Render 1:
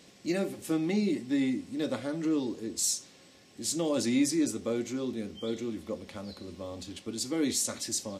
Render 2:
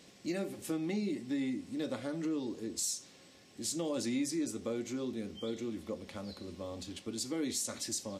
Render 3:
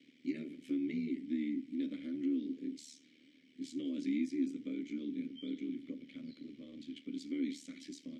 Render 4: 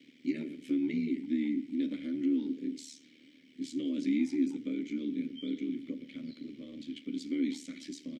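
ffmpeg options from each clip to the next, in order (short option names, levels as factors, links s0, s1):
-af "acompressor=threshold=0.0224:ratio=2,volume=0.794"
-filter_complex "[0:a]aeval=exprs='val(0)*sin(2*PI*37*n/s)':c=same,asplit=3[s0][s1][s2];[s0]bandpass=f=270:t=q:w=8,volume=1[s3];[s1]bandpass=f=2290:t=q:w=8,volume=0.501[s4];[s2]bandpass=f=3010:t=q:w=8,volume=0.355[s5];[s3][s4][s5]amix=inputs=3:normalize=0,volume=2.66"
-filter_complex "[0:a]asplit=2[s0][s1];[s1]adelay=120,highpass=300,lowpass=3400,asoftclip=type=hard:threshold=0.02,volume=0.141[s2];[s0][s2]amix=inputs=2:normalize=0,volume=1.78"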